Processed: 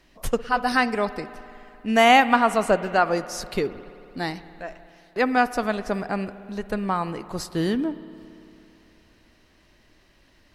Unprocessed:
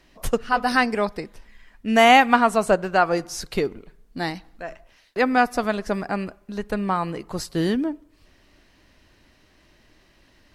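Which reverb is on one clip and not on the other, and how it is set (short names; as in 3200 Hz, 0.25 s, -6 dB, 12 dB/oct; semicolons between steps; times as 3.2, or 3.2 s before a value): spring tank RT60 2.9 s, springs 56 ms, chirp 30 ms, DRR 14.5 dB; gain -1.5 dB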